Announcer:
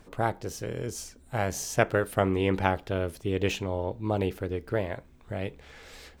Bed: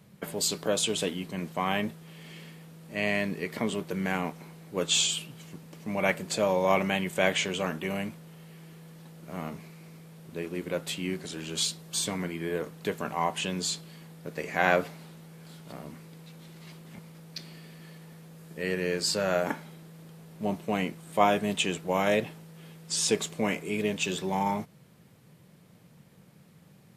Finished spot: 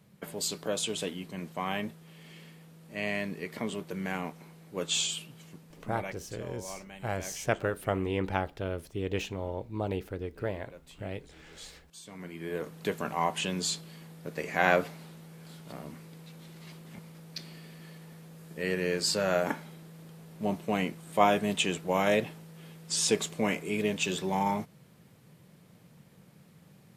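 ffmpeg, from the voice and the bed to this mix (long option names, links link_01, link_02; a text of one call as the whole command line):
ffmpeg -i stem1.wav -i stem2.wav -filter_complex "[0:a]adelay=5700,volume=-5dB[link_01];[1:a]volume=14.5dB,afade=type=out:start_time=5.49:duration=0.73:silence=0.177828,afade=type=in:start_time=12.04:duration=0.76:silence=0.112202[link_02];[link_01][link_02]amix=inputs=2:normalize=0" out.wav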